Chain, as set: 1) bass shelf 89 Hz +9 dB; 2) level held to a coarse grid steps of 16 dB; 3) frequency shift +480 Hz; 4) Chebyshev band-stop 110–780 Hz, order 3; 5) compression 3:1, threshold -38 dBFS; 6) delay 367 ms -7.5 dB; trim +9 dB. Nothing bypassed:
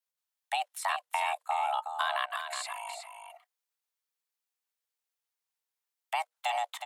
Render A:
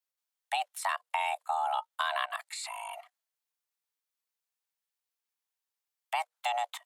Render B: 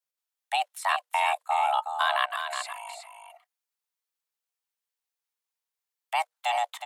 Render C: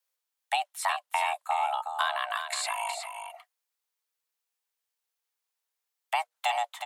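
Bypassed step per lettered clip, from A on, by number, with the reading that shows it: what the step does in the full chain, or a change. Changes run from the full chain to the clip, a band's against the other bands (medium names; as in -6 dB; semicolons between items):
6, momentary loudness spread change -4 LU; 5, momentary loudness spread change +1 LU; 2, momentary loudness spread change -5 LU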